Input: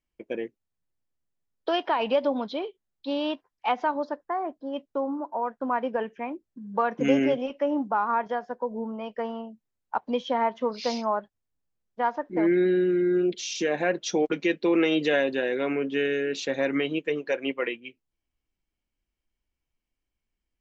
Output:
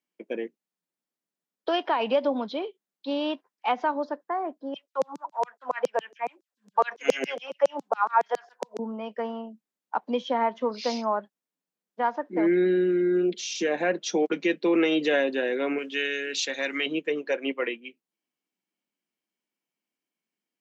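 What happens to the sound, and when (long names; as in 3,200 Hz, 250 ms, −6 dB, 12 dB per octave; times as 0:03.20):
0:04.74–0:08.79: auto-filter high-pass saw down 7.2 Hz 410–6,400 Hz
0:15.78–0:16.86: tilt shelving filter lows −9 dB, about 1,400 Hz
whole clip: Butterworth high-pass 170 Hz 48 dB per octave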